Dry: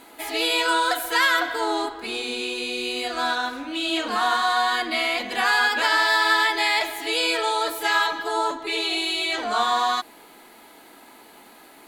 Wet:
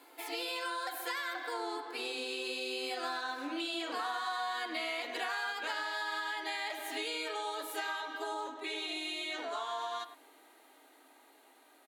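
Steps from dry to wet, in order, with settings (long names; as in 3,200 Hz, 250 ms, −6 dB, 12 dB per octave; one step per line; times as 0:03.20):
source passing by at 0:04.48, 16 m/s, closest 19 metres
downward compressor 8 to 1, threshold −36 dBFS, peak gain reduction 17.5 dB
elliptic high-pass filter 270 Hz
far-end echo of a speakerphone 100 ms, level −12 dB
level +2 dB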